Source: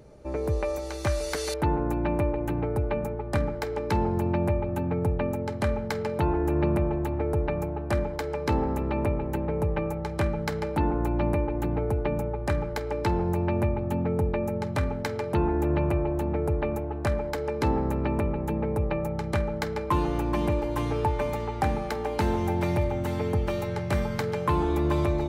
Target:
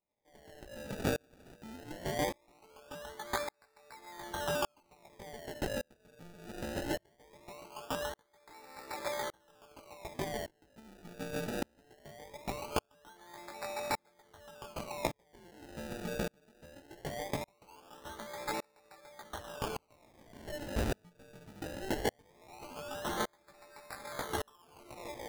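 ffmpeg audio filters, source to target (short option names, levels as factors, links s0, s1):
-filter_complex "[0:a]asettb=1/sr,asplit=3[s0][s1][s2];[s0]atrim=end=19.404[s3];[s1]atrim=start=19.4:end=20.48,asetpts=PTS-STARTPTS,afade=t=in:d=0.004:c=qsin,afade=t=out:st=1.076:d=0.004:c=qsin,asoftclip=type=hard:threshold=0.0251[s4];[s2]atrim=start=20.476[s5];[s3][s4]acrossfade=d=0.004:c1=hsin:c2=qsin[s6];[s6][s5]acrossfade=d=0.004:c1=qsin:c2=hsin,flanger=delay=17:depth=2:speed=1.2,acrusher=bits=8:mode=log:mix=0:aa=0.000001,highpass=1100,acrusher=samples=28:mix=1:aa=0.000001:lfo=1:lforange=28:lforate=0.2,alimiter=level_in=2:limit=0.0631:level=0:latency=1:release=321,volume=0.501,asettb=1/sr,asplit=3[s7][s8][s9];[s7]atrim=end=23.814[s10];[s8]atrim=start=23.81:end=24.96,asetpts=PTS-STARTPTS,afade=t=in:d=0.004:c=qsin,afade=t=out:st=1.146:d=0.004:c=qsin,equalizer=f=11000:w=7.5:g=8.5[s11];[s9]atrim=start=24.956[s12];[s10][s11]acrossfade=d=0.004:c1=hsin:c2=qsin[s13];[s13][s12]acrossfade=d=0.004:c1=qsin:c2=hsin,aeval=exprs='val(0)*pow(10,-38*if(lt(mod(-0.86*n/s,1),2*abs(-0.86)/1000),1-mod(-0.86*n/s,1)/(2*abs(-0.86)/1000),(mod(-0.86*n/s,1)-2*abs(-0.86)/1000)/(1-2*abs(-0.86)/1000))/20)':c=same,volume=4.22"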